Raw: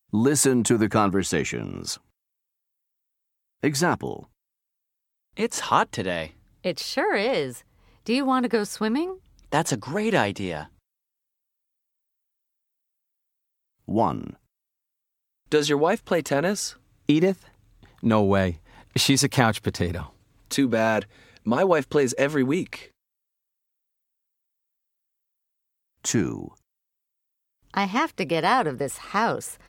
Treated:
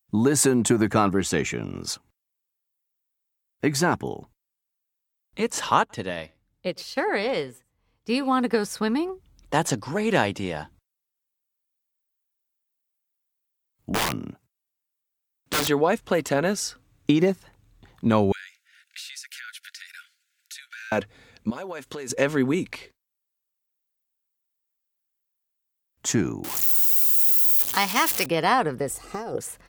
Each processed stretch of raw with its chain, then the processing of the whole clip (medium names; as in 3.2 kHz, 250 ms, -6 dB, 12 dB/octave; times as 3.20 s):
5.79–8.31 s: delay 104 ms -22.5 dB + upward expansion, over -43 dBFS
13.91–15.68 s: high-pass 78 Hz 24 dB/octave + integer overflow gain 18 dB
18.32–20.92 s: Chebyshev high-pass 1.4 kHz, order 8 + compression 5:1, threshold -37 dBFS
21.50–22.10 s: tilt EQ +2 dB/octave + compression 4:1, threshold -33 dBFS
26.44–28.26 s: jump at every zero crossing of -29.5 dBFS + RIAA curve recording
28.90–29.38 s: high-order bell 2 kHz -12 dB 2.6 oct + compressor with a negative ratio -29 dBFS, ratio -0.5 + comb 2.5 ms, depth 46%
whole clip: none